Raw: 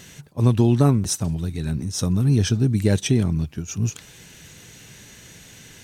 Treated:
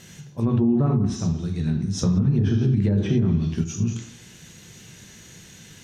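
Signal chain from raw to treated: on a send at -3 dB: reverb RT60 0.70 s, pre-delay 3 ms; on the sum: treble ducked by the level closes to 930 Hz, closed at -8 dBFS; limiter -8.5 dBFS, peak gain reduction 7 dB; 2.03–3.64 three-band squash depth 100%; gain -4 dB

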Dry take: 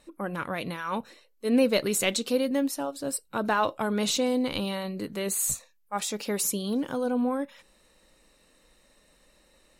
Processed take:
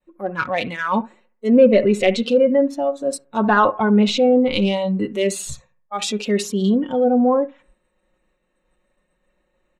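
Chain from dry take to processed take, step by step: Wiener smoothing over 9 samples; expander -58 dBFS; on a send: analogue delay 68 ms, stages 1024, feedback 39%, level -15.5 dB; on the sum: treble ducked by the level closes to 1600 Hz, closed at -21.5 dBFS; comb 5.5 ms, depth 53%; transient shaper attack -4 dB, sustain 0 dB; in parallel at -3 dB: soft clip -21 dBFS, distortion -16 dB; on the sum: spectral noise reduction 14 dB; gain +8 dB

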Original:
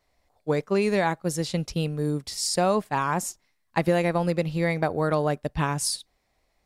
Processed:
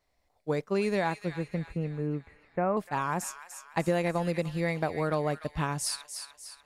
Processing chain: 1.21–2.77 Chebyshev low-pass 2300 Hz, order 5; on a send: thin delay 0.296 s, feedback 50%, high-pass 1700 Hz, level -7.5 dB; on the sum: gain -5 dB

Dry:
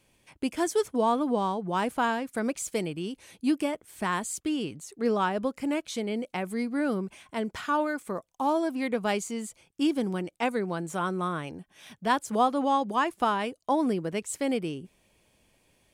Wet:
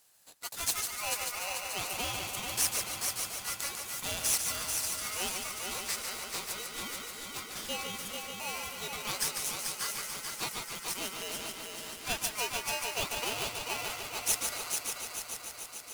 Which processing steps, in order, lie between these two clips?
differentiator; multi-head echo 0.146 s, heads first and third, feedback 74%, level -6 dB; polarity switched at an audio rate 1700 Hz; gain +6 dB

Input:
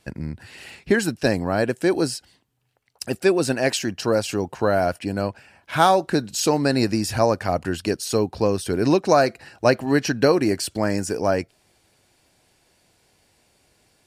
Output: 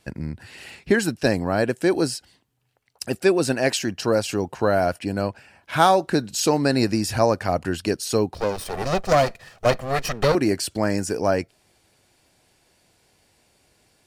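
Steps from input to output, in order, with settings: 8.34–10.35 minimum comb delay 1.6 ms

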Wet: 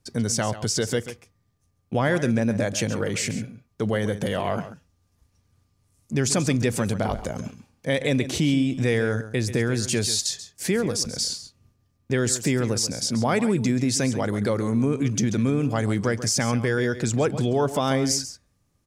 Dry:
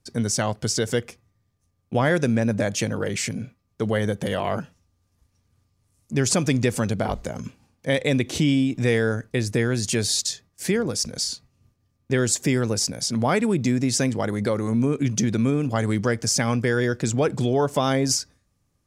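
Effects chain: in parallel at -2 dB: limiter -19 dBFS, peak gain reduction 10 dB; on the sum: echo 0.136 s -13 dB; gain -4 dB

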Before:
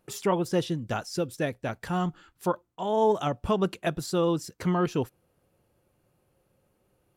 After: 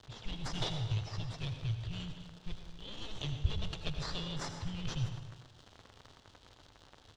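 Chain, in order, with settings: one diode to ground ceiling -29 dBFS; low-pass opened by the level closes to 1300 Hz, open at -24.5 dBFS; high shelf 4800 Hz +6.5 dB; crackle 280/s -40 dBFS; elliptic band-stop 110–3100 Hz, stop band 40 dB; in parallel at -5 dB: sample-rate reducer 3000 Hz, jitter 0%; on the sum: air absorption 150 m; outdoor echo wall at 43 m, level -16 dB; on a send at -6 dB: reverb RT60 0.90 s, pre-delay 72 ms; on the sum: gain +4 dB

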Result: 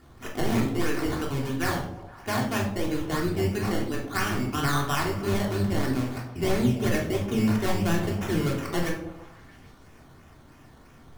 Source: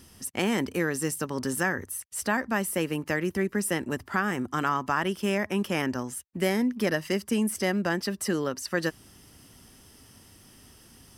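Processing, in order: octaver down 1 oct, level -2 dB; 1.28–3.48 steep low-pass 4700 Hz 72 dB/oct; decimation with a swept rate 14×, swing 60% 3 Hz; delay with a stepping band-pass 0.155 s, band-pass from 400 Hz, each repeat 0.7 oct, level -11 dB; reverb RT60 0.60 s, pre-delay 3 ms, DRR -2 dB; gain -5 dB

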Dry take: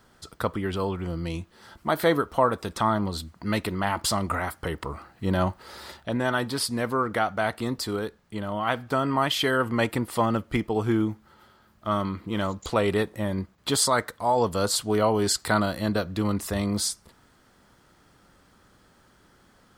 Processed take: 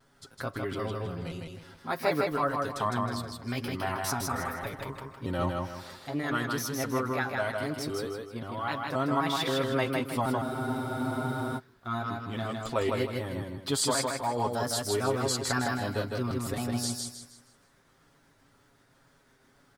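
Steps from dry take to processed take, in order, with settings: trilling pitch shifter +2.5 st, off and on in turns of 0.263 s; comb 7.4 ms, depth 76%; vibrato 2 Hz 77 cents; feedback echo 0.158 s, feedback 35%, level -3 dB; spectral freeze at 10.45, 1.12 s; gain -8 dB

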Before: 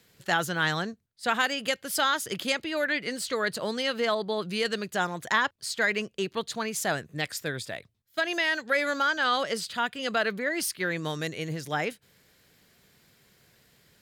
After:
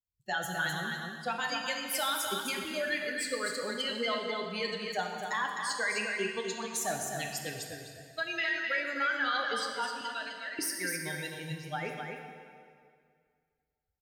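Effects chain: per-bin expansion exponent 2; 10.01–10.59 passive tone stack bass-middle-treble 10-0-10; harmonic-percussive split harmonic -7 dB; limiter -26 dBFS, peak gain reduction 7.5 dB; on a send: echo 0.256 s -5 dB; on the sum: plate-style reverb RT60 2.1 s, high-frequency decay 0.85×, DRR 2 dB; gain +2 dB

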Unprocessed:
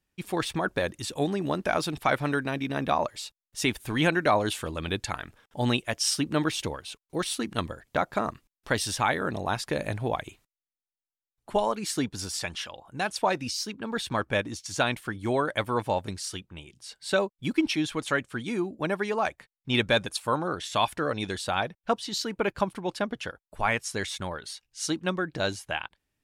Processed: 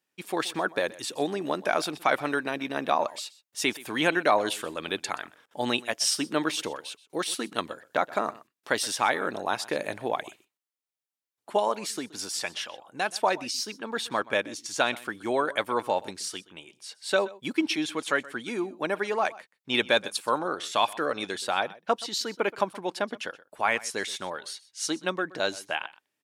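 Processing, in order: HPF 300 Hz 12 dB/oct; 11.74–12.16 compressor, threshold -31 dBFS, peak gain reduction 6 dB; on a send: echo 0.125 s -20 dB; on the sum: gain +1 dB

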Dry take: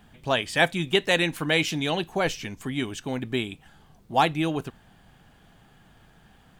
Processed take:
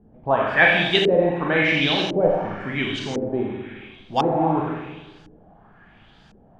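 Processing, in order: Schroeder reverb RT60 1.3 s, combs from 29 ms, DRR -1 dB; LFO low-pass saw up 0.95 Hz 390–5900 Hz

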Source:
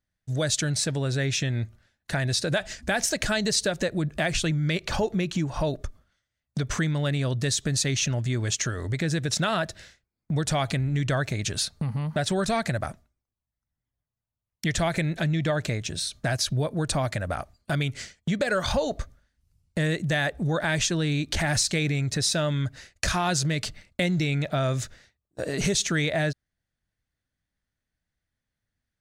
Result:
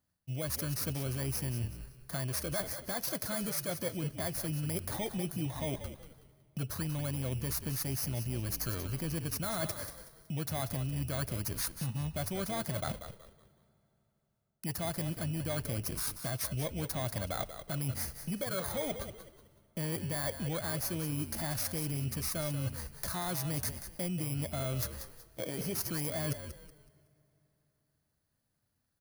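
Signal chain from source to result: FFT order left unsorted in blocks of 16 samples; notch 430 Hz, Q 12; reverse; compressor 12:1, threshold -37 dBFS, peak gain reduction 17 dB; reverse; HPF 77 Hz; frequency-shifting echo 0.186 s, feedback 32%, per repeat -59 Hz, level -10 dB; on a send at -23.5 dB: reverb RT60 3.6 s, pre-delay 4 ms; on the sum: gain +4.5 dB

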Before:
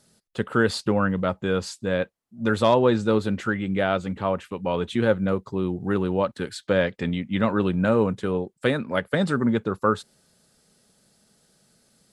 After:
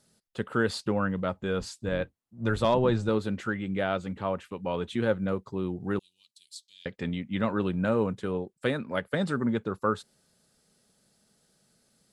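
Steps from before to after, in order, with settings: 1.35–3.09 octaver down 1 oct, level -4 dB; 5.99–6.86 inverse Chebyshev high-pass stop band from 1600 Hz, stop band 50 dB; gain -5.5 dB

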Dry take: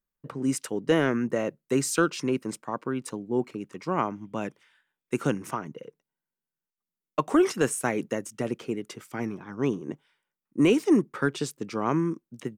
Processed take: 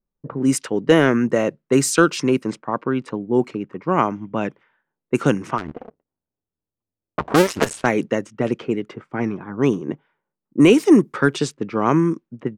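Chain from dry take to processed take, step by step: 5.58–7.86 cycle switcher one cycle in 2, muted; low-pass opened by the level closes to 690 Hz, open at -22 dBFS; gain +8.5 dB

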